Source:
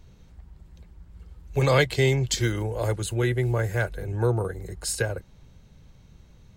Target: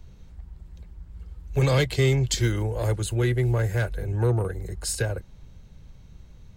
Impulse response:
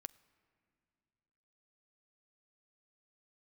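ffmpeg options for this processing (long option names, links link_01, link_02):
-filter_complex "[0:a]lowshelf=frequency=76:gain=8,acrossover=split=400|2900[link_01][link_02][link_03];[link_02]asoftclip=type=tanh:threshold=-25dB[link_04];[link_01][link_04][link_03]amix=inputs=3:normalize=0"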